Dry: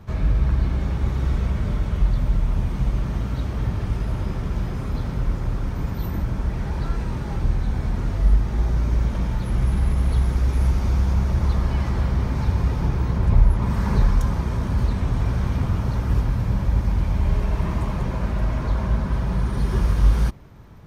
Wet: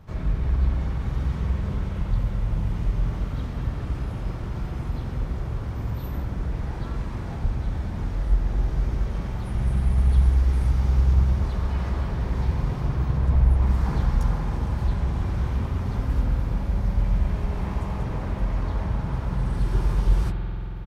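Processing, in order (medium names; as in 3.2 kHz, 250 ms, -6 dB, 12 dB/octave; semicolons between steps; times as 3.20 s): harmony voices -3 st -2 dB; spring tank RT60 3.8 s, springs 46 ms, chirp 20 ms, DRR 3 dB; trim -7 dB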